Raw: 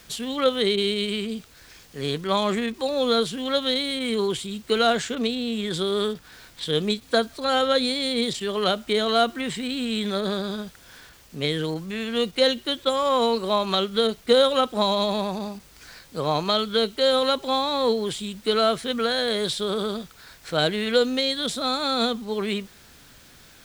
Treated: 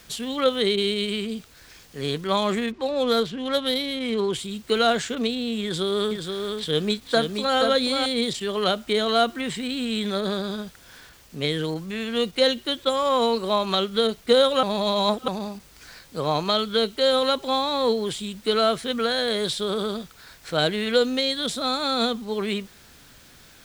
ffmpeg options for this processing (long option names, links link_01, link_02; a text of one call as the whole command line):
ffmpeg -i in.wav -filter_complex "[0:a]asettb=1/sr,asplit=3[link_01][link_02][link_03];[link_01]atrim=end=2.714[link_04];[link_02]atrim=start=2.71:end=4.33,asetpts=PTS-STARTPTS,afade=type=in:duration=0.004:curve=qsin,afade=type=out:start_time=1.616:duration=0.004:curve=qsin,adynamicsmooth=sensitivity=2.5:basefreq=2900[link_05];[link_03]atrim=start=4.326[link_06];[link_04][link_05]acrossfade=duration=0.004:curve1=hsin:curve2=qsin[link_07];[link_07][link_06]acrossfade=duration=0.004:curve1=qsin:curve2=hsin,asettb=1/sr,asplit=3[link_08][link_09][link_10];[link_08]atrim=end=5.634[link_11];[link_09]atrim=start=5.63:end=8.06,asetpts=PTS-STARTPTS,afade=type=in:duration=0.004:curve=qsin,afade=type=out:start_time=2.426:duration=0.004:curve=qsin,aecho=1:1:478:0.562,atrim=end_sample=107163[link_12];[link_10]atrim=start=8.056[link_13];[link_11][link_12]acrossfade=duration=0.004:curve1=hsin:curve2=qsin[link_14];[link_14][link_13]acrossfade=duration=0.004:curve1=qsin:curve2=hsin,asplit=3[link_15][link_16][link_17];[link_15]atrim=end=14.632[link_18];[link_16]atrim=start=14.628:end=15.282,asetpts=PTS-STARTPTS,areverse[link_19];[link_17]atrim=start=15.278[link_20];[link_18][link_19]acrossfade=duration=0.004:curve1=hsin:curve2=hsin[link_21];[link_21][link_20]acrossfade=duration=0.004:curve1=hsin:curve2=hsin" out.wav